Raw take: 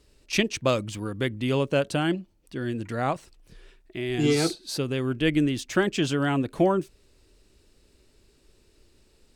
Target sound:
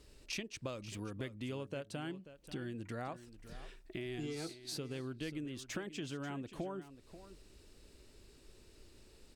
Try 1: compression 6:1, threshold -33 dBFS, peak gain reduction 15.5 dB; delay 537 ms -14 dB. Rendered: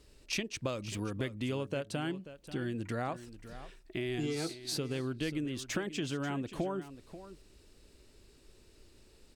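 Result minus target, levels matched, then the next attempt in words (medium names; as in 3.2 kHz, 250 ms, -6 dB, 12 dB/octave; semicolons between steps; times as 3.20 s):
compression: peak gain reduction -6.5 dB
compression 6:1, threshold -41 dBFS, peak gain reduction 22 dB; delay 537 ms -14 dB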